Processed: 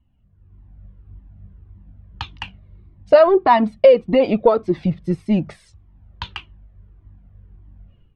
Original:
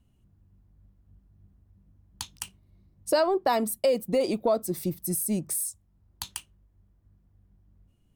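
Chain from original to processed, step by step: LPF 3100 Hz 24 dB/oct; AGC gain up to 13.5 dB; cascading flanger falling 1.7 Hz; gain +4 dB

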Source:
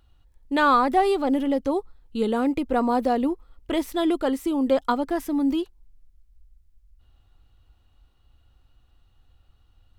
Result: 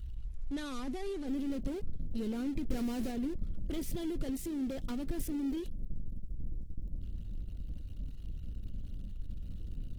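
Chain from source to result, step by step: 2.67–3.11 zero-crossing step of -32.5 dBFS; power-law curve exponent 0.5; passive tone stack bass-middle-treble 10-0-1; gain +2 dB; Opus 16 kbps 48000 Hz

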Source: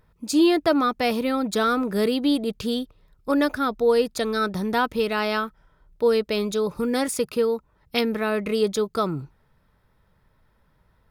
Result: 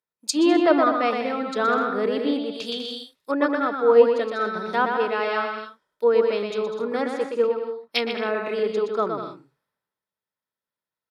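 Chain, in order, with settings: HPF 320 Hz 12 dB/oct; high shelf 3900 Hz +8.5 dB; on a send: bouncing-ball echo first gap 0.12 s, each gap 0.65×, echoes 5; on the sum: treble ducked by the level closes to 1900 Hz, closed at -20 dBFS; three-band expander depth 70%

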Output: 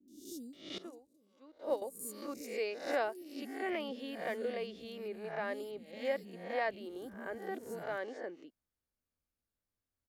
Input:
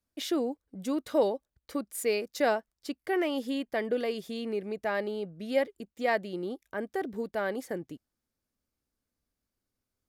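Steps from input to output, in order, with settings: spectral swells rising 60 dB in 0.54 s; three bands offset in time lows, highs, mids 80/530 ms, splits 260/5600 Hz; 0.78–1.82 upward expander 2.5:1, over -35 dBFS; gain -8 dB

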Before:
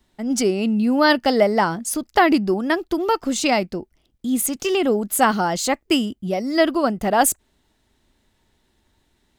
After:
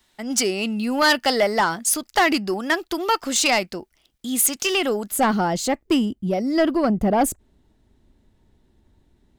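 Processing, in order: tilt shelf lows -7 dB, about 680 Hz, from 5.1 s lows +3 dB, from 6.88 s lows +7.5 dB; soft clip -11 dBFS, distortion -13 dB

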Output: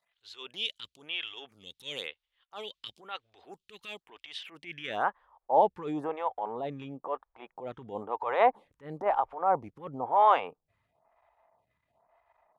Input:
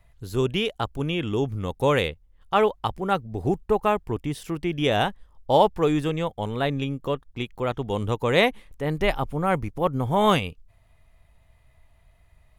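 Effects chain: transient shaper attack -11 dB, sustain +4 dB; band-pass sweep 3400 Hz -> 850 Hz, 4.32–5.33; photocell phaser 1 Hz; gain +6.5 dB

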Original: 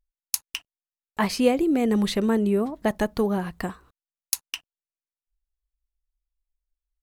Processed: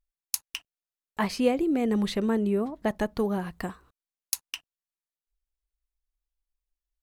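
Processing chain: 1.23–3.2 high shelf 5900 Hz -5 dB; gain -3.5 dB

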